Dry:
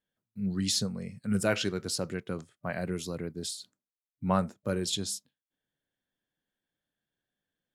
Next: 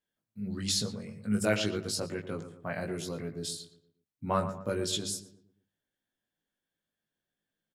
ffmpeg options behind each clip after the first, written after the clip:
-filter_complex "[0:a]bandreject=f=50:t=h:w=6,bandreject=f=100:t=h:w=6,bandreject=f=150:t=h:w=6,bandreject=f=200:t=h:w=6,asplit=2[a][b];[b]adelay=19,volume=-3dB[c];[a][c]amix=inputs=2:normalize=0,asplit=2[d][e];[e]adelay=117,lowpass=f=1.7k:p=1,volume=-10dB,asplit=2[f][g];[g]adelay=117,lowpass=f=1.7k:p=1,volume=0.43,asplit=2[h][i];[i]adelay=117,lowpass=f=1.7k:p=1,volume=0.43,asplit=2[j][k];[k]adelay=117,lowpass=f=1.7k:p=1,volume=0.43,asplit=2[l][m];[m]adelay=117,lowpass=f=1.7k:p=1,volume=0.43[n];[f][h][j][l][n]amix=inputs=5:normalize=0[o];[d][o]amix=inputs=2:normalize=0,volume=-2.5dB"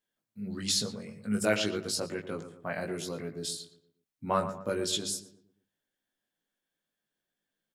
-af "equalizer=f=72:t=o:w=2.1:g=-8.5,volume=1.5dB"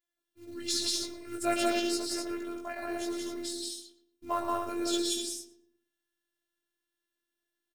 -af "acrusher=bits=6:mode=log:mix=0:aa=0.000001,afftfilt=real='hypot(re,im)*cos(PI*b)':imag='0':win_size=512:overlap=0.75,aecho=1:1:110.8|177.8|250.7:0.447|0.891|0.562"

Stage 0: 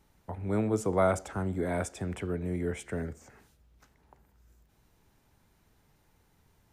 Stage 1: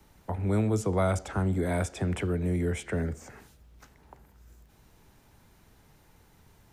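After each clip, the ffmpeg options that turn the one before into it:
-filter_complex "[0:a]acrossover=split=150|1600|4800[a][b][c][d];[d]alimiter=level_in=17dB:limit=-24dB:level=0:latency=1:release=471,volume=-17dB[e];[a][b][c][e]amix=inputs=4:normalize=0,acrossover=split=150|3000[f][g][h];[g]acompressor=threshold=-40dB:ratio=2[i];[f][i][h]amix=inputs=3:normalize=0,volume=7.5dB"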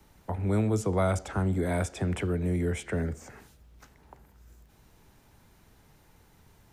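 -af anull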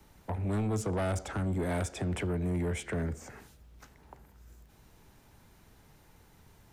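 -af "asoftclip=type=tanh:threshold=-26.5dB"

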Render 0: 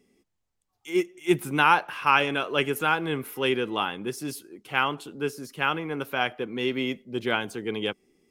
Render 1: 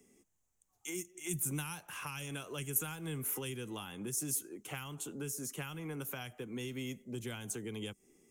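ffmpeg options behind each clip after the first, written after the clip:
-filter_complex "[0:a]acrossover=split=180|3000[a][b][c];[b]acompressor=threshold=-33dB:ratio=6[d];[a][d][c]amix=inputs=3:normalize=0,highshelf=f=5.6k:t=q:w=3:g=6,acrossover=split=180|6600[e][f][g];[f]acompressor=threshold=-40dB:ratio=6[h];[e][h][g]amix=inputs=3:normalize=0,volume=-1.5dB"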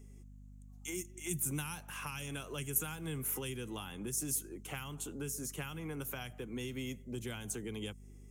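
-af "aeval=exprs='val(0)+0.00251*(sin(2*PI*50*n/s)+sin(2*PI*2*50*n/s)/2+sin(2*PI*3*50*n/s)/3+sin(2*PI*4*50*n/s)/4+sin(2*PI*5*50*n/s)/5)':c=same"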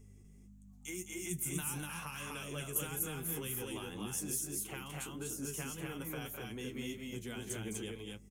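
-filter_complex "[0:a]asplit=2[a][b];[b]aecho=0:1:209.9|244.9:0.398|0.794[c];[a][c]amix=inputs=2:normalize=0,flanger=delay=8.6:depth=4.6:regen=47:speed=1.7:shape=triangular,volume=1.5dB"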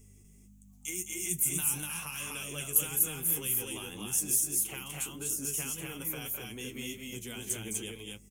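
-af "aexciter=amount=1.2:drive=8.7:freq=2.3k"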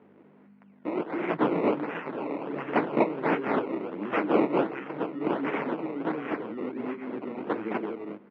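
-af "acrusher=samples=19:mix=1:aa=0.000001:lfo=1:lforange=19:lforate=1.4,asoftclip=type=hard:threshold=-21.5dB,highpass=f=190:w=0.5412,highpass=f=190:w=1.3066,equalizer=f=310:t=q:w=4:g=7,equalizer=f=450:t=q:w=4:g=4,equalizer=f=750:t=q:w=4:g=-3,equalizer=f=1.2k:t=q:w=4:g=-4,equalizer=f=1.7k:t=q:w=4:g=-5,lowpass=f=2.2k:w=0.5412,lowpass=f=2.2k:w=1.3066,volume=6dB"

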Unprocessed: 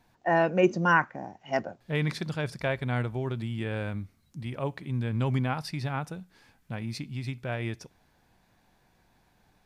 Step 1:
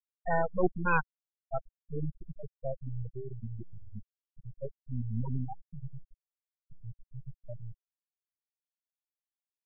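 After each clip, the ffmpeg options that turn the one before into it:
-af "aeval=exprs='max(val(0),0)':c=same,afftfilt=real='re*gte(hypot(re,im),0.126)':imag='im*gte(hypot(re,im),0.126)':win_size=1024:overlap=0.75"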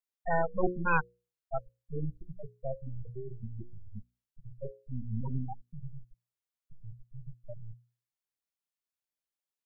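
-af "bandreject=f=60:t=h:w=6,bandreject=f=120:t=h:w=6,bandreject=f=180:t=h:w=6,bandreject=f=240:t=h:w=6,bandreject=f=300:t=h:w=6,bandreject=f=360:t=h:w=6,bandreject=f=420:t=h:w=6,bandreject=f=480:t=h:w=6,bandreject=f=540:t=h:w=6"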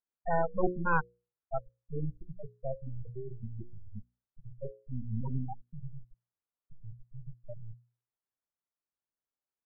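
-af "lowpass=f=1.6k:w=0.5412,lowpass=f=1.6k:w=1.3066"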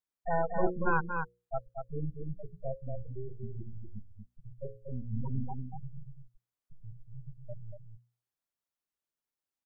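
-af "aecho=1:1:236:0.531,volume=-1dB"

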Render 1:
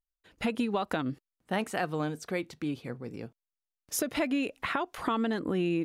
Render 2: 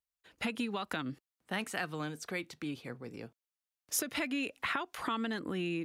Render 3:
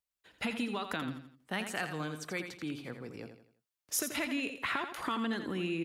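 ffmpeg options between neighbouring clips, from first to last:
-filter_complex "[0:a]acrossover=split=340|1100[a][b][c];[b]acompressor=threshold=-42dB:ratio=6[d];[a][d][c]amix=inputs=3:normalize=0,highpass=46,lowshelf=f=400:g=-7"
-af "aecho=1:1:84|168|252|336:0.376|0.147|0.0572|0.0223"

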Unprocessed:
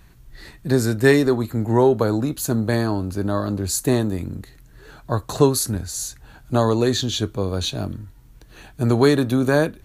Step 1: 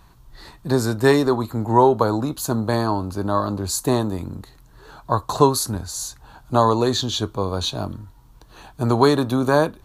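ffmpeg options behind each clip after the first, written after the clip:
-af "equalizer=f=1k:t=o:w=1:g=12,equalizer=f=2k:t=o:w=1:g=-6,equalizer=f=4k:t=o:w=1:g=4,volume=-2dB"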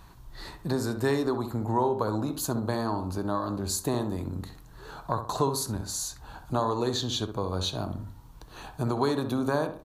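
-filter_complex "[0:a]acompressor=threshold=-32dB:ratio=2,asplit=2[a][b];[b]adelay=65,lowpass=f=1.7k:p=1,volume=-8dB,asplit=2[c][d];[d]adelay=65,lowpass=f=1.7k:p=1,volume=0.39,asplit=2[e][f];[f]adelay=65,lowpass=f=1.7k:p=1,volume=0.39,asplit=2[g][h];[h]adelay=65,lowpass=f=1.7k:p=1,volume=0.39[i];[c][e][g][i]amix=inputs=4:normalize=0[j];[a][j]amix=inputs=2:normalize=0"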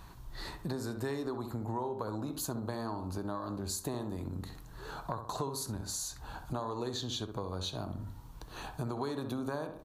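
-af "acompressor=threshold=-36dB:ratio=3"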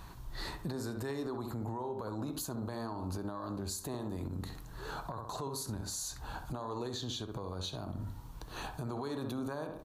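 -af "alimiter=level_in=7.5dB:limit=-24dB:level=0:latency=1:release=77,volume=-7.5dB,volume=2dB"

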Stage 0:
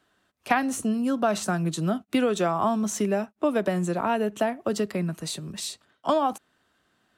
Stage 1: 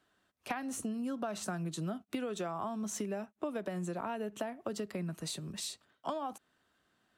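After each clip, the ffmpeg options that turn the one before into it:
-af "acompressor=threshold=-28dB:ratio=6,volume=-6dB"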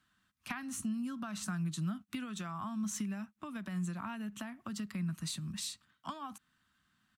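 -af "firequalizer=gain_entry='entry(210,0);entry(430,-24);entry(1100,-3)':delay=0.05:min_phase=1,volume=3dB"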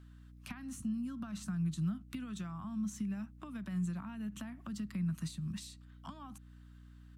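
-filter_complex "[0:a]acrossover=split=240[a][b];[b]acompressor=threshold=-51dB:ratio=6[c];[a][c]amix=inputs=2:normalize=0,aeval=exprs='val(0)+0.00158*(sin(2*PI*60*n/s)+sin(2*PI*2*60*n/s)/2+sin(2*PI*3*60*n/s)/3+sin(2*PI*4*60*n/s)/4+sin(2*PI*5*60*n/s)/5)':c=same,volume=2.5dB"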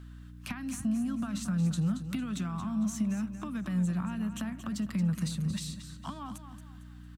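-filter_complex "[0:a]asplit=2[a][b];[b]asoftclip=type=tanh:threshold=-39.5dB,volume=-5dB[c];[a][c]amix=inputs=2:normalize=0,aecho=1:1:227|454|681|908:0.299|0.11|0.0409|0.0151,volume=4.5dB"

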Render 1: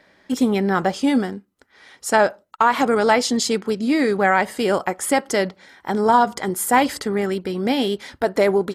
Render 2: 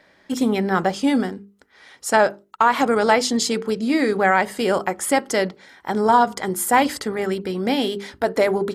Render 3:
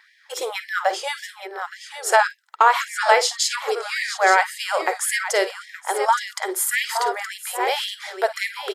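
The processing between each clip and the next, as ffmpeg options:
-af "bandreject=f=50:t=h:w=6,bandreject=f=100:t=h:w=6,bandreject=f=150:t=h:w=6,bandreject=f=200:t=h:w=6,bandreject=f=250:t=h:w=6,bandreject=f=300:t=h:w=6,bandreject=f=350:t=h:w=6,bandreject=f=400:t=h:w=6,bandreject=f=450:t=h:w=6"
-af "aecho=1:1:48|56|821|870:0.15|0.168|0.112|0.335,asubboost=boost=10.5:cutoff=80,afftfilt=real='re*gte(b*sr/1024,320*pow(1700/320,0.5+0.5*sin(2*PI*1.8*pts/sr)))':imag='im*gte(b*sr/1024,320*pow(1700/320,0.5+0.5*sin(2*PI*1.8*pts/sr)))':win_size=1024:overlap=0.75,volume=2dB"

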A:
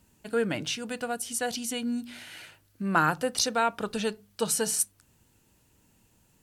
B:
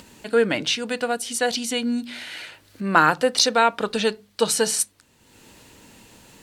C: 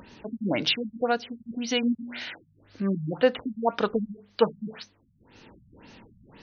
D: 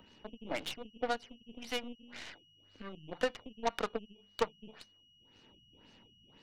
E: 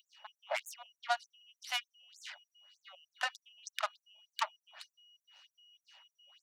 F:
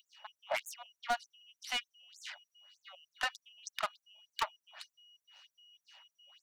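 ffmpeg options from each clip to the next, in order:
-af "acompressor=mode=upward:threshold=-42dB:ratio=2.5,equalizer=f=250:t=o:w=1:g=6,equalizer=f=500:t=o:w=1:g=8,equalizer=f=1k:t=o:w=1:g=6,equalizer=f=2k:t=o:w=1:g=8,equalizer=f=4k:t=o:w=1:g=10,equalizer=f=8k:t=o:w=1:g=4,volume=-1.5dB"
-af "afftfilt=real='re*lt(b*sr/1024,200*pow(6600/200,0.5+0.5*sin(2*PI*1.9*pts/sr)))':imag='im*lt(b*sr/1024,200*pow(6600/200,0.5+0.5*sin(2*PI*1.9*pts/sr)))':win_size=1024:overlap=0.75"
-filter_complex "[0:a]acrossover=split=180|440|1100|4800[a][b][c][d][e];[a]acompressor=threshold=-48dB:ratio=4[f];[b]acompressor=threshold=-42dB:ratio=4[g];[c]acompressor=threshold=-28dB:ratio=4[h];[d]acompressor=threshold=-34dB:ratio=4[i];[e]acompressor=threshold=-55dB:ratio=4[j];[f][g][h][i][j]amix=inputs=5:normalize=0,aeval=exprs='val(0)+0.00282*sin(2*PI*2900*n/s)':c=same,aeval=exprs='0.168*(cos(1*acos(clip(val(0)/0.168,-1,1)))-cos(1*PI/2))+0.0422*(cos(4*acos(clip(val(0)/0.168,-1,1)))-cos(4*PI/2))+0.0668*(cos(6*acos(clip(val(0)/0.168,-1,1)))-cos(6*PI/2))+0.015*(cos(7*acos(clip(val(0)/0.168,-1,1)))-cos(7*PI/2))+0.0422*(cos(8*acos(clip(val(0)/0.168,-1,1)))-cos(8*PI/2))':c=same,volume=-4.5dB"
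-af "afftfilt=real='re*gte(b*sr/1024,530*pow(6500/530,0.5+0.5*sin(2*PI*3.3*pts/sr)))':imag='im*gte(b*sr/1024,530*pow(6500/530,0.5+0.5*sin(2*PI*3.3*pts/sr)))':win_size=1024:overlap=0.75,volume=3.5dB"
-af "asoftclip=type=hard:threshold=-26dB,volume=1.5dB"

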